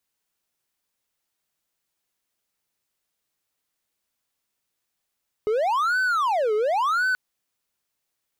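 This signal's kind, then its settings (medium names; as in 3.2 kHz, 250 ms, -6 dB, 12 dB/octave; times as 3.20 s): siren wail 421–1520 Hz 0.93 per s triangle -17.5 dBFS 1.68 s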